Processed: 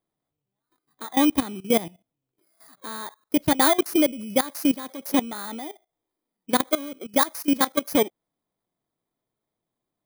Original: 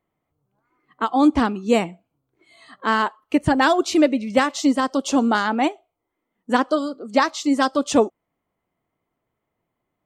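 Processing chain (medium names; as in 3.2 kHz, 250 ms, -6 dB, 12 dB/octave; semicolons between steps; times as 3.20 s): bit-reversed sample order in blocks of 16 samples; peaking EQ 69 Hz -14 dB 0.46 oct; level held to a coarse grid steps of 17 dB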